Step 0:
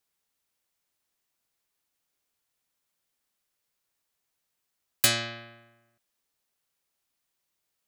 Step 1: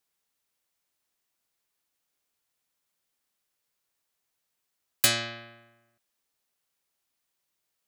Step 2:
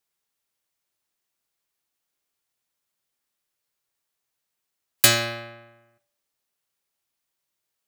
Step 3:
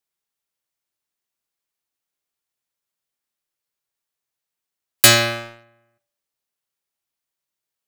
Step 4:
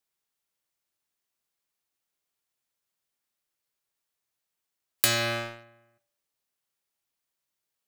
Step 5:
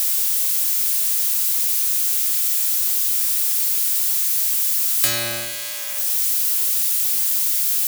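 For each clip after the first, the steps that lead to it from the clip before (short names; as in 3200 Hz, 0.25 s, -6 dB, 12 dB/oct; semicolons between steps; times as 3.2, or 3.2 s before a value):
low shelf 140 Hz -3 dB
spectral noise reduction 7 dB; reverb RT60 0.65 s, pre-delay 4 ms, DRR 11 dB; gain +6 dB
sample leveller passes 2
compressor 12:1, threshold -21 dBFS, peak gain reduction 14.5 dB
switching spikes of -15.5 dBFS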